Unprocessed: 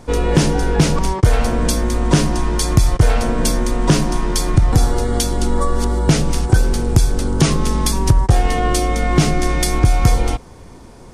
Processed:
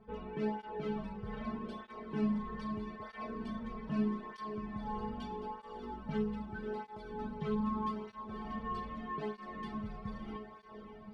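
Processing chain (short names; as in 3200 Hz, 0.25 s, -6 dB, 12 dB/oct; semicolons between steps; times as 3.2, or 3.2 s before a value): high shelf 6000 Hz -9.5 dB; reverse; compressor, threshold -20 dBFS, peak gain reduction 13.5 dB; reverse; air absorption 420 m; metallic resonator 210 Hz, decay 0.35 s, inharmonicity 0.002; diffused feedback echo 0.554 s, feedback 46%, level -8 dB; tape flanging out of phase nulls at 0.8 Hz, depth 3.5 ms; gain +5.5 dB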